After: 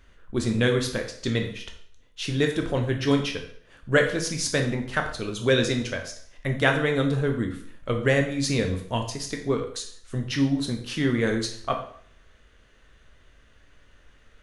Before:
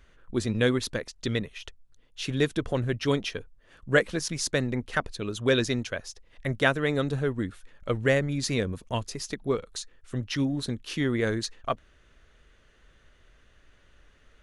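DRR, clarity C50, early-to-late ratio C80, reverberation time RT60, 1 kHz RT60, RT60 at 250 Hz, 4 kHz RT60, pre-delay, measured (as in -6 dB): 3.0 dB, 8.5 dB, 11.5 dB, 0.55 s, 0.55 s, 0.60 s, 0.55 s, 6 ms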